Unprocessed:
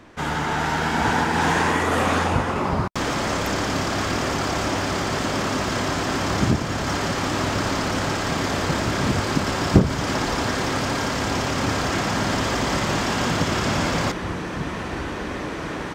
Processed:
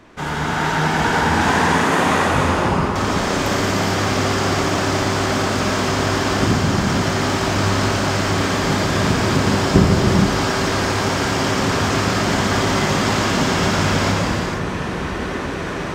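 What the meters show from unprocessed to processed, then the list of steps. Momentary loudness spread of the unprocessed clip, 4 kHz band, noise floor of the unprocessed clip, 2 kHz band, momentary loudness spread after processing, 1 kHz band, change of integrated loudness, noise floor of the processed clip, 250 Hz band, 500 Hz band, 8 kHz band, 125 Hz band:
6 LU, +4.5 dB, -30 dBFS, +4.5 dB, 6 LU, +4.0 dB, +4.5 dB, -25 dBFS, +5.0 dB, +5.0 dB, +4.5 dB, +5.5 dB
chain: gated-style reverb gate 500 ms flat, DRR -2.5 dB

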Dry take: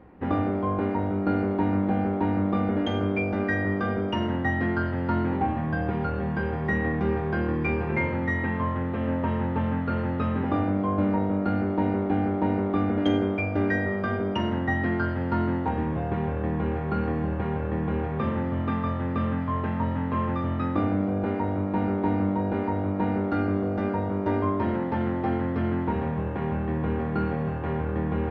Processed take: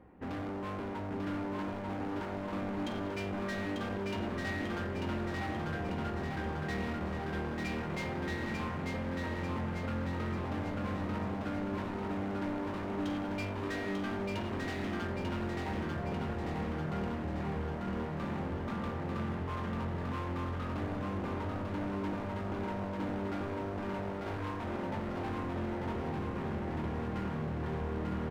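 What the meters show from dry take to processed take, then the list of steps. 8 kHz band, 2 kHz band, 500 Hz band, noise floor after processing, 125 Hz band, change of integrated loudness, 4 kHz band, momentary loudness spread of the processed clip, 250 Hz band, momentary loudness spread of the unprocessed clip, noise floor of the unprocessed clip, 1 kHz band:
no reading, -8.5 dB, -9.5 dB, -38 dBFS, -10.0 dB, -10.0 dB, -4.0 dB, 2 LU, -11.0 dB, 3 LU, -29 dBFS, -9.5 dB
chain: overload inside the chain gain 29.5 dB; feedback delay 893 ms, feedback 57%, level -3 dB; trim -7 dB

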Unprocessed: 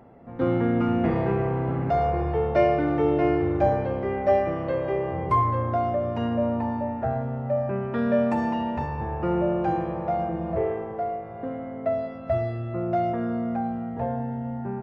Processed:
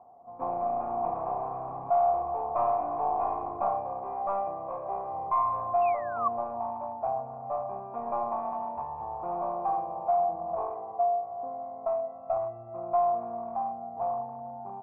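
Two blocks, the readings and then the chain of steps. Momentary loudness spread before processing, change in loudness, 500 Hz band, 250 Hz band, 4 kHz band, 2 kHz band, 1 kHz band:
8 LU, -5.0 dB, -6.5 dB, -20.5 dB, under -30 dB, -15.0 dB, +0.5 dB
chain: one-sided wavefolder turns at -24 dBFS; painted sound fall, 5.81–6.28 s, 1.1–2.8 kHz -21 dBFS; cascade formant filter a; trim +7.5 dB

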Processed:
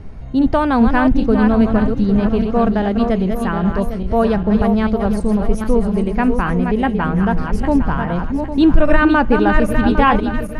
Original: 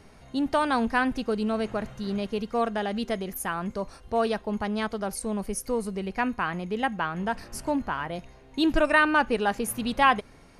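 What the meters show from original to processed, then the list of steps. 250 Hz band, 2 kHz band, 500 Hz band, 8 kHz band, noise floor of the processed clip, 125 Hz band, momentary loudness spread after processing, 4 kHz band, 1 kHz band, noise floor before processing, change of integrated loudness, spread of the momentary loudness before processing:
+14.5 dB, +5.0 dB, +10.0 dB, no reading, -25 dBFS, +17.5 dB, 6 LU, +2.0 dB, +7.5 dB, -52 dBFS, +11.0 dB, 10 LU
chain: backward echo that repeats 403 ms, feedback 57%, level -6 dB; RIAA curve playback; loudness maximiser +7.5 dB; trim -1 dB

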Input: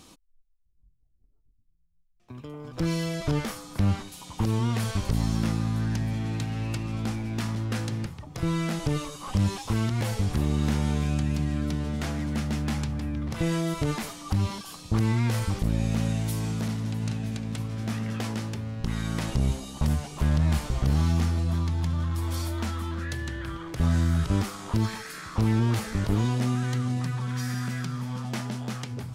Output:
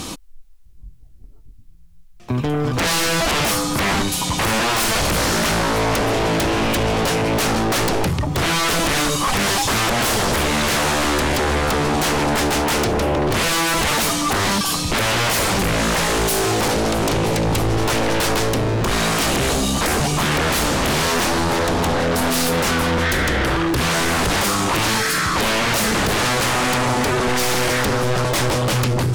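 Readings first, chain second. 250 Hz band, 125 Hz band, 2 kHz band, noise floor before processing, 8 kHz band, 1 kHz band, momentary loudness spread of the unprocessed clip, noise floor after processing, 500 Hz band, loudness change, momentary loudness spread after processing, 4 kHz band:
+7.0 dB, +2.0 dB, +19.0 dB, -63 dBFS, +19.0 dB, +18.0 dB, 8 LU, -40 dBFS, +17.0 dB, +10.0 dB, 2 LU, +19.0 dB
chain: sine folder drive 19 dB, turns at -15.5 dBFS

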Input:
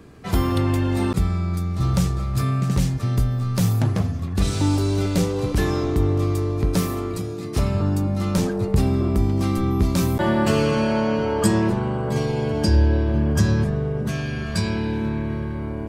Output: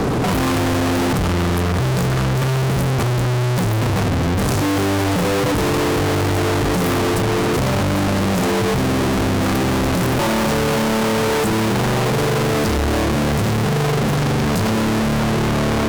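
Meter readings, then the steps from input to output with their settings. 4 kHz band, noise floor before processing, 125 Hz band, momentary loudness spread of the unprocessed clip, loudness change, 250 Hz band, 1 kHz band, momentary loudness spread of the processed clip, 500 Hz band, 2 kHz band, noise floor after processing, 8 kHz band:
+9.0 dB, -29 dBFS, +2.0 dB, 6 LU, +4.0 dB, +3.5 dB, +8.5 dB, 1 LU, +5.5 dB, +9.5 dB, -18 dBFS, +7.5 dB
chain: ten-band graphic EQ 125 Hz +10 dB, 250 Hz +8 dB, 500 Hz +9 dB, 1 kHz +11 dB, 2 kHz -9 dB; fuzz box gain 47 dB, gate -53 dBFS; trim -4 dB

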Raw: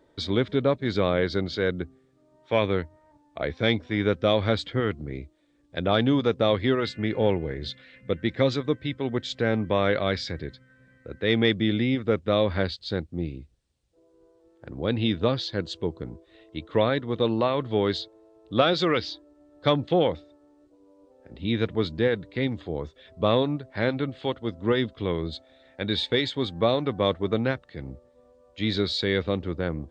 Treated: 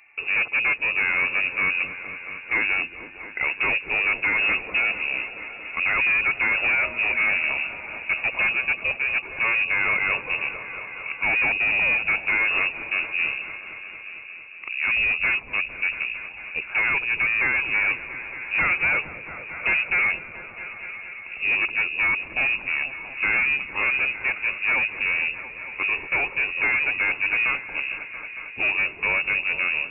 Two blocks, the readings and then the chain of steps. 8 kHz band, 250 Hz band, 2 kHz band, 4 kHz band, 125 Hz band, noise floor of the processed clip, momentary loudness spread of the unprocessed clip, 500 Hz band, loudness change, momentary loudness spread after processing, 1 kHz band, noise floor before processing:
no reading, -16.5 dB, +15.0 dB, -4.5 dB, -17.0 dB, -40 dBFS, 13 LU, -14.5 dB, +4.0 dB, 13 LU, -0.5 dB, -62 dBFS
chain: overload inside the chain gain 26 dB; frequency inversion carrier 2.7 kHz; delay with an opening low-pass 227 ms, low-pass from 400 Hz, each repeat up 1 oct, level -6 dB; trim +7 dB

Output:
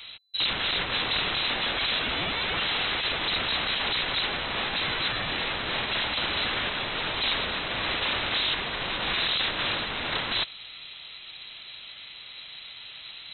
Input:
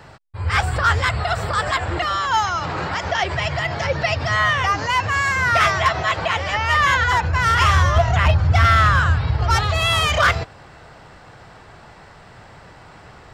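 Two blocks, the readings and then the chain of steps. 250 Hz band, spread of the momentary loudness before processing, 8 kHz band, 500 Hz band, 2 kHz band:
-6.0 dB, 8 LU, under -40 dB, -10.5 dB, -9.0 dB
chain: integer overflow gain 21 dB; frequency inversion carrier 4 kHz

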